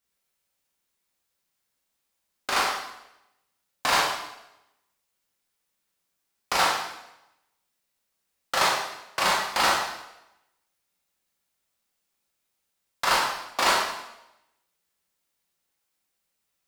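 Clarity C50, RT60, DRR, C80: 2.0 dB, 0.90 s, −4.5 dB, 4.5 dB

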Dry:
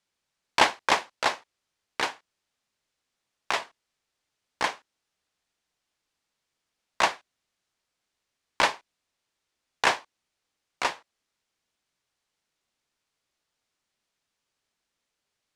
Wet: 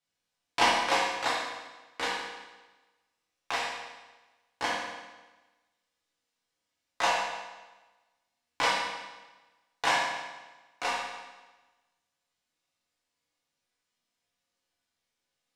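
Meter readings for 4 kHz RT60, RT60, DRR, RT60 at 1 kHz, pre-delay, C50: 1.1 s, 1.2 s, −7.0 dB, 1.2 s, 4 ms, 0.0 dB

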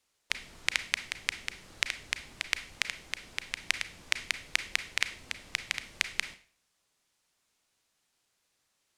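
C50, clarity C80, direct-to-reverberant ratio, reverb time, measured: 13.0 dB, 17.5 dB, 10.5 dB, 0.40 s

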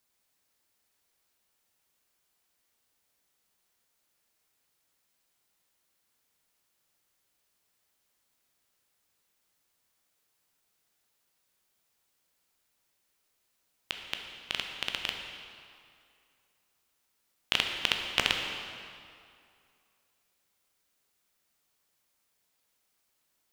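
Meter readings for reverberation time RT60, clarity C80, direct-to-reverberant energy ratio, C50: 2.4 s, 5.0 dB, 2.5 dB, 4.0 dB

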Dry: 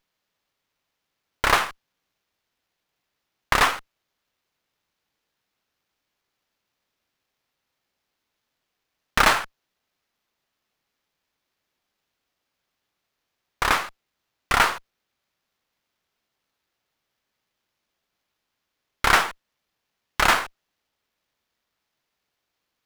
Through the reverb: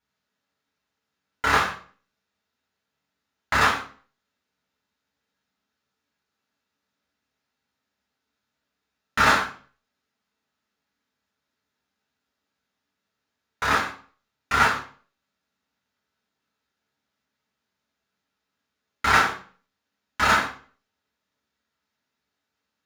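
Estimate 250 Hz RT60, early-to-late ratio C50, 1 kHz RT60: 0.50 s, 7.5 dB, 0.40 s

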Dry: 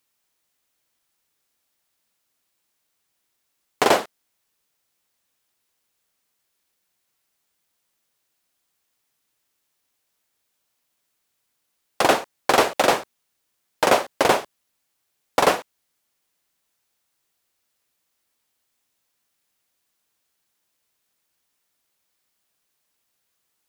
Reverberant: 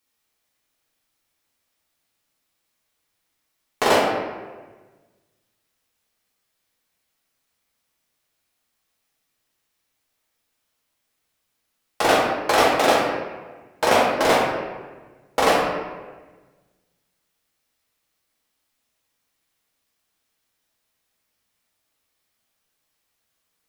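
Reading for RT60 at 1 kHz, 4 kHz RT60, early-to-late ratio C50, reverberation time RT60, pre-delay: 1.3 s, 0.85 s, 1.0 dB, 1.3 s, 3 ms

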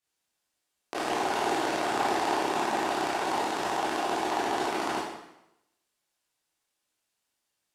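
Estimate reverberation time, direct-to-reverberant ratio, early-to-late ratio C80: 0.90 s, −9.0 dB, 3.5 dB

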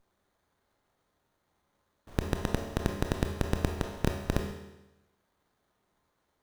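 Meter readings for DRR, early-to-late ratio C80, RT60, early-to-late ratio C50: 2.5 dB, 7.5 dB, 1.0 s, 4.5 dB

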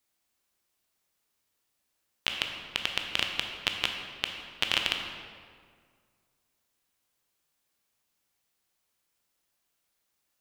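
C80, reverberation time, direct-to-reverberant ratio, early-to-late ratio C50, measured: 5.5 dB, 1.9 s, 3.0 dB, 4.5 dB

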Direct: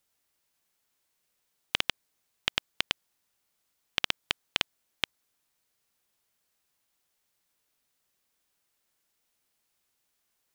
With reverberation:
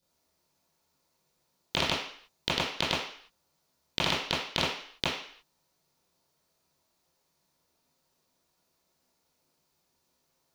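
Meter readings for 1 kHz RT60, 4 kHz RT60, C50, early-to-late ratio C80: 0.55 s, 0.60 s, 3.5 dB, 7.0 dB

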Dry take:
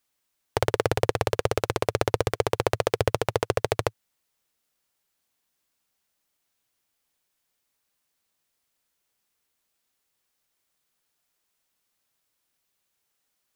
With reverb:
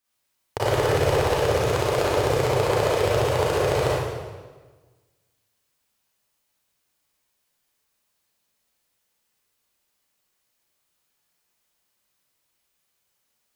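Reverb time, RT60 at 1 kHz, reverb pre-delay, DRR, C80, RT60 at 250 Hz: 1.4 s, 1.3 s, 30 ms, −9.0 dB, −1.0 dB, 1.6 s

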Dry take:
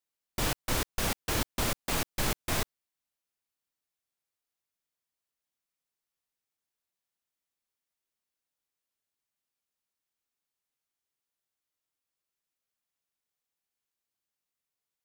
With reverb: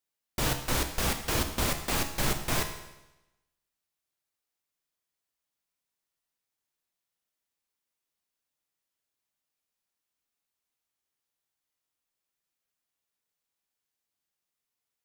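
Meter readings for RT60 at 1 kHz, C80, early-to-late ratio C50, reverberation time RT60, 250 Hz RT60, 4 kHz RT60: 0.95 s, 10.5 dB, 8.5 dB, 0.95 s, 1.0 s, 0.95 s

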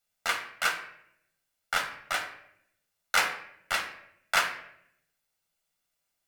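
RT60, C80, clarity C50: 0.70 s, 11.5 dB, 8.5 dB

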